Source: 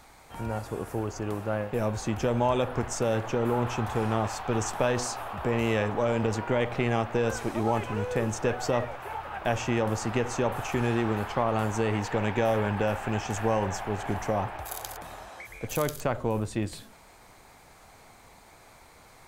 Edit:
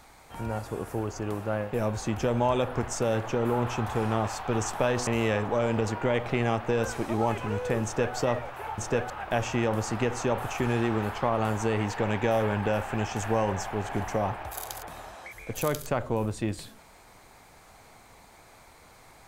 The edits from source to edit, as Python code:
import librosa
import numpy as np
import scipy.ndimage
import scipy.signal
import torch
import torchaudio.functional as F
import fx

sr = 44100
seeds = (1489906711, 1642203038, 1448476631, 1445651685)

y = fx.edit(x, sr, fx.cut(start_s=5.07, length_s=0.46),
    fx.duplicate(start_s=8.3, length_s=0.32, to_s=9.24), tone=tone)